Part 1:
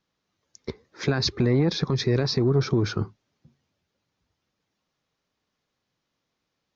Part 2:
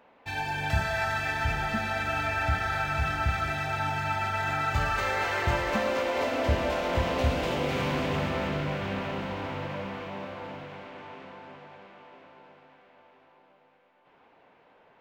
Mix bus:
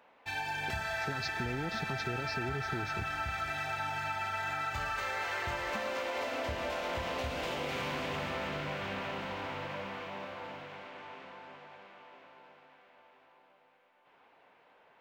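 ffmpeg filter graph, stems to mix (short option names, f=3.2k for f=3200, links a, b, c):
-filter_complex "[0:a]volume=-10dB[a];[1:a]lowshelf=f=480:g=-9,volume=-1dB[b];[a][b]amix=inputs=2:normalize=0,acompressor=threshold=-32dB:ratio=6"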